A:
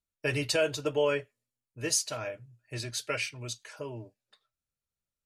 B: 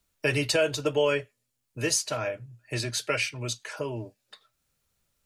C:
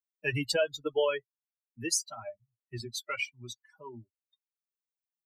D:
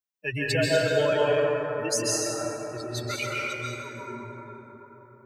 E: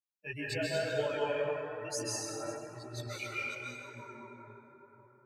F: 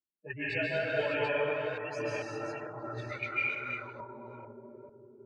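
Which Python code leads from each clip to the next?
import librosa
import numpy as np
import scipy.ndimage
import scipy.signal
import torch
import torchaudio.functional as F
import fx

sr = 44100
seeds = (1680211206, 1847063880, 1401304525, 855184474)

y1 = fx.band_squash(x, sr, depth_pct=40)
y1 = y1 * librosa.db_to_amplitude(4.5)
y2 = fx.bin_expand(y1, sr, power=3.0)
y3 = fx.rev_plate(y2, sr, seeds[0], rt60_s=4.6, hf_ratio=0.3, predelay_ms=120, drr_db=-7.0)
y4 = fx.chorus_voices(y3, sr, voices=2, hz=1.0, base_ms=18, depth_ms=3.0, mix_pct=60)
y4 = fx.small_body(y4, sr, hz=(840.0, 2400.0), ring_ms=45, db=8)
y4 = y4 * librosa.db_to_amplitude(-7.5)
y5 = fx.reverse_delay(y4, sr, ms=445, wet_db=-4.5)
y5 = fx.envelope_lowpass(y5, sr, base_hz=340.0, top_hz=2400.0, q=2.2, full_db=-35.0, direction='up')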